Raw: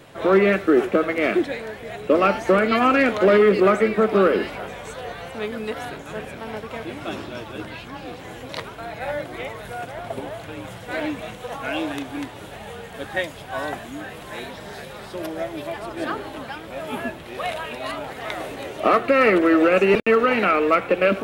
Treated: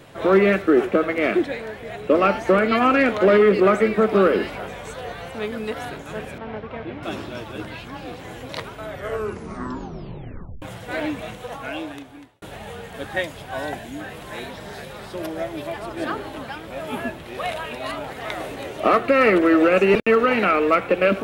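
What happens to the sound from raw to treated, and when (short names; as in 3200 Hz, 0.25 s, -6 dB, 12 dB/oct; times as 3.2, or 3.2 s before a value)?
0.62–3.73 tone controls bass -1 dB, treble -3 dB
6.38–7.03 air absorption 300 m
8.72 tape stop 1.90 s
11.31–12.42 fade out
13.54–14 bell 1200 Hz -14 dB 0.23 oct
whole clip: low shelf 170 Hz +3 dB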